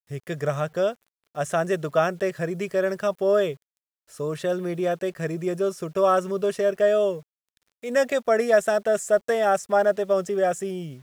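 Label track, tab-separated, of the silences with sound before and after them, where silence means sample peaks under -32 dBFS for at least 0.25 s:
0.930000	1.370000	silence
3.530000	4.200000	silence
7.190000	7.840000	silence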